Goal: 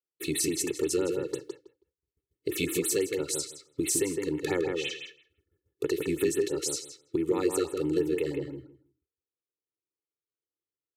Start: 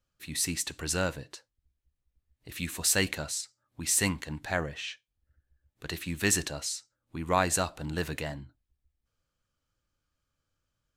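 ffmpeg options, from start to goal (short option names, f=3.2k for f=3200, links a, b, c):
-filter_complex "[0:a]agate=range=-33dB:threshold=-59dB:ratio=3:detection=peak,highpass=260,lowshelf=f=530:t=q:w=3:g=9.5,bandreject=f=1.6k:w=5,aecho=1:1:2.3:0.93,acompressor=threshold=-34dB:ratio=6,asplit=2[a][b];[b]adelay=161,lowpass=f=2.3k:p=1,volume=-4dB,asplit=2[c][d];[d]adelay=161,lowpass=f=2.3k:p=1,volume=0.17,asplit=2[e][f];[f]adelay=161,lowpass=f=2.3k:p=1,volume=0.17[g];[c][e][g]amix=inputs=3:normalize=0[h];[a][h]amix=inputs=2:normalize=0,afftfilt=real='re*(1-between(b*sr/1024,710*pow(6100/710,0.5+0.5*sin(2*PI*6*pts/sr))/1.41,710*pow(6100/710,0.5+0.5*sin(2*PI*6*pts/sr))*1.41))':imag='im*(1-between(b*sr/1024,710*pow(6100/710,0.5+0.5*sin(2*PI*6*pts/sr))/1.41,710*pow(6100/710,0.5+0.5*sin(2*PI*6*pts/sr))*1.41))':win_size=1024:overlap=0.75,volume=7.5dB"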